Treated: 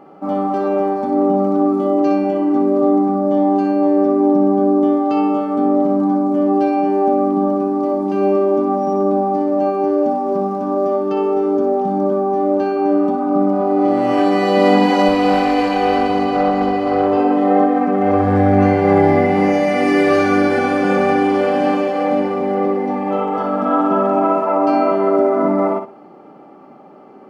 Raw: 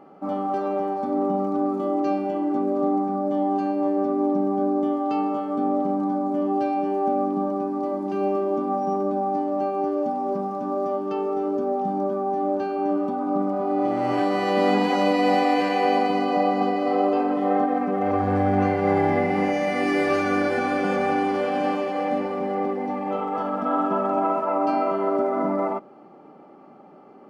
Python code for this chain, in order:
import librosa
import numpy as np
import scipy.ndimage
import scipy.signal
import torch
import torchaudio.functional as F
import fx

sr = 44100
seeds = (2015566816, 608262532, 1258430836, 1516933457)

y = fx.tube_stage(x, sr, drive_db=13.0, bias=0.5, at=(15.08, 17.18))
y = fx.echo_feedback(y, sr, ms=61, feedback_pct=22, wet_db=-7.0)
y = y * librosa.db_to_amplitude(5.5)